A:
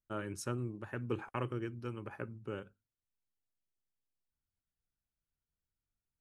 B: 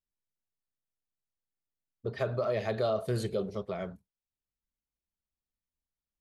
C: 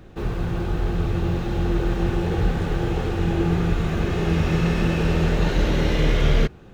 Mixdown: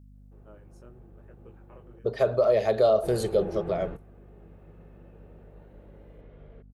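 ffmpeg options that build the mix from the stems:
-filter_complex "[0:a]flanger=delay=17.5:depth=7:speed=0.91,adelay=350,volume=0.112[s0];[1:a]highshelf=f=4500:g=10,volume=0.891,asplit=2[s1][s2];[2:a]lowpass=2100,adelay=150,volume=0.112,asplit=3[s3][s4][s5];[s3]atrim=end=1.99,asetpts=PTS-STARTPTS,afade=t=out:st=1.986:d=0.004:c=hsin[s6];[s4]atrim=start=1.99:end=3.03,asetpts=PTS-STARTPTS,volume=0[s7];[s5]atrim=start=3.03,asetpts=PTS-STARTPTS,afade=t=in:d=0.004:c=hsin[s8];[s6][s7][s8]concat=n=3:v=0:a=1[s9];[s2]apad=whole_len=303433[s10];[s9][s10]sidechaingate=range=0.126:threshold=0.00631:ratio=16:detection=peak[s11];[s0][s1][s11]amix=inputs=3:normalize=0,equalizer=f=550:w=0.94:g=11,aeval=exprs='val(0)+0.00316*(sin(2*PI*50*n/s)+sin(2*PI*2*50*n/s)/2+sin(2*PI*3*50*n/s)/3+sin(2*PI*4*50*n/s)/4+sin(2*PI*5*50*n/s)/5)':c=same"

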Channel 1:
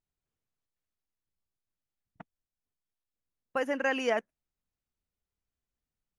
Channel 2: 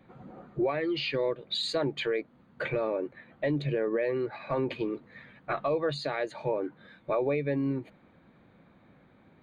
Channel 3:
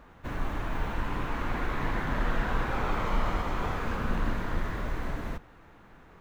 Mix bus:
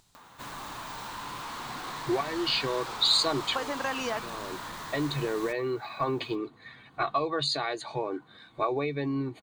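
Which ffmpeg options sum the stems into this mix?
-filter_complex "[0:a]acompressor=threshold=0.0355:ratio=6,volume=0.562,asplit=2[s0][s1];[1:a]highshelf=f=6500:g=10,aecho=1:1:2.7:0.5,adelay=1500,volume=0.473[s2];[2:a]aemphasis=mode=production:type=bsi,volume=63.1,asoftclip=hard,volume=0.0158,adelay=150,volume=0.398[s3];[s1]apad=whole_len=481696[s4];[s2][s4]sidechaincompress=threshold=0.00316:ratio=8:attack=12:release=510[s5];[s0][s5][s3]amix=inputs=3:normalize=0,equalizer=f=125:t=o:w=1:g=8,equalizer=f=250:t=o:w=1:g=3,equalizer=f=1000:t=o:w=1:g=11,equalizer=f=4000:t=o:w=1:g=11,equalizer=f=8000:t=o:w=1:g=10,acompressor=mode=upward:threshold=0.00447:ratio=2.5"

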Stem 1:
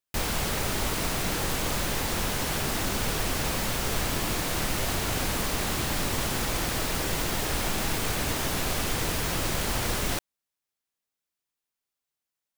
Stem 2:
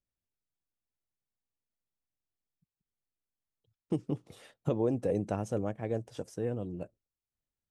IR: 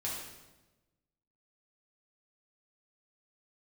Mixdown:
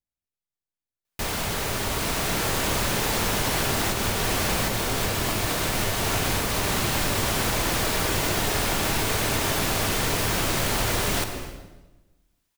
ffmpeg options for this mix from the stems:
-filter_complex "[0:a]dynaudnorm=f=810:g=3:m=2.82,bass=f=250:g=-3,treble=f=4000:g=-1,adelay=1050,volume=0.944,asplit=2[s0][s1];[s1]volume=0.501[s2];[1:a]volume=0.631,asplit=2[s3][s4];[s4]apad=whole_len=600999[s5];[s0][s5]sidechaincompress=threshold=0.0158:ratio=8:attack=16:release=333[s6];[2:a]atrim=start_sample=2205[s7];[s2][s7]afir=irnorm=-1:irlink=0[s8];[s6][s3][s8]amix=inputs=3:normalize=0,acompressor=threshold=0.0631:ratio=2.5"

